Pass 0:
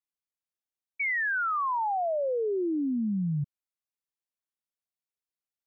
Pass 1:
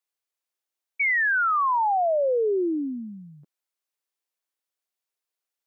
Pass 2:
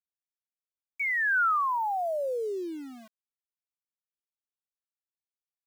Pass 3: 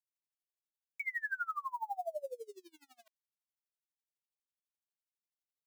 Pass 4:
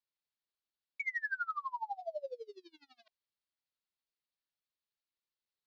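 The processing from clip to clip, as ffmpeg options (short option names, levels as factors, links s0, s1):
-af "highpass=f=320:w=0.5412,highpass=f=320:w=1.3066,volume=2"
-filter_complex "[0:a]equalizer=f=1400:t=o:w=0.73:g=6.5,acrossover=split=290[s0][s1];[s0]alimiter=level_in=7.5:limit=0.0631:level=0:latency=1,volume=0.133[s2];[s2][s1]amix=inputs=2:normalize=0,aeval=exprs='val(0)*gte(abs(val(0)),0.0133)':c=same,volume=0.398"
-af "highpass=f=580:w=0.5412,highpass=f=580:w=1.3066,equalizer=f=1300:t=o:w=1.3:g=-8,aeval=exprs='val(0)*pow(10,-28*(0.5-0.5*cos(2*PI*12*n/s))/20)':c=same"
-af "highshelf=f=6200:t=q:w=3:g=-12.5,bandreject=f=720:w=12,adynamicsmooth=sensitivity=6:basefreq=6500"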